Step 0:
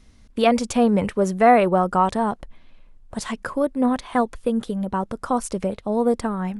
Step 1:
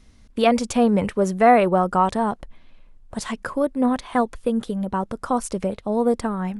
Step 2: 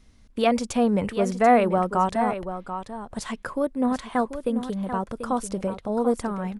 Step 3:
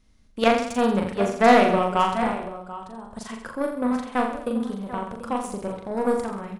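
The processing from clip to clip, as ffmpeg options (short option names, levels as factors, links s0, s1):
-af anull
-af "aecho=1:1:738:0.316,volume=0.668"
-af "aeval=exprs='0.596*(cos(1*acos(clip(val(0)/0.596,-1,1)))-cos(1*PI/2))+0.0531*(cos(7*acos(clip(val(0)/0.596,-1,1)))-cos(7*PI/2))':c=same,aecho=1:1:40|84|132.4|185.6|244.2:0.631|0.398|0.251|0.158|0.1,volume=1.26"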